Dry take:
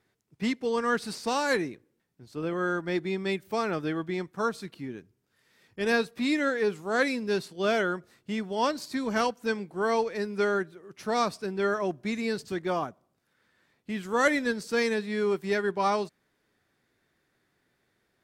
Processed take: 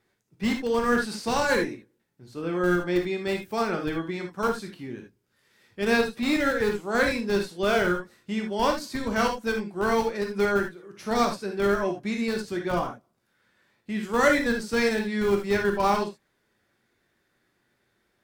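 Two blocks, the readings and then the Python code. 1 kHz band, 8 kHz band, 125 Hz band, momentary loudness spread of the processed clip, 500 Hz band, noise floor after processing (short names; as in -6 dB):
+2.5 dB, +3.0 dB, +4.0 dB, 10 LU, +2.5 dB, -72 dBFS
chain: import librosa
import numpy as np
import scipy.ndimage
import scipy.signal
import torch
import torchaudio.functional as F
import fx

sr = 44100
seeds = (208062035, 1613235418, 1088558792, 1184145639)

p1 = fx.schmitt(x, sr, flips_db=-22.5)
p2 = x + (p1 * librosa.db_to_amplitude(-5.0))
y = fx.rev_gated(p2, sr, seeds[0], gate_ms=100, shape='flat', drr_db=2.0)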